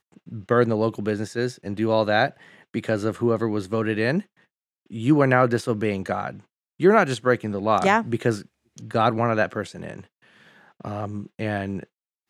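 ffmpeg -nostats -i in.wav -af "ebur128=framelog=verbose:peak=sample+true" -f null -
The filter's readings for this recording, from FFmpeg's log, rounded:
Integrated loudness:
  I:         -23.1 LUFS
  Threshold: -34.1 LUFS
Loudness range:
  LRA:         5.4 LU
  Threshold: -43.7 LUFS
  LRA low:   -27.2 LUFS
  LRA high:  -21.8 LUFS
Sample peak:
  Peak:       -3.1 dBFS
True peak:
  Peak:       -3.1 dBFS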